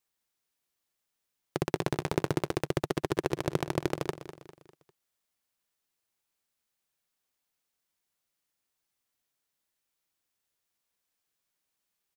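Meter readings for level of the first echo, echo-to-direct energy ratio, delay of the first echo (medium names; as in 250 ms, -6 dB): -12.5 dB, -11.5 dB, 200 ms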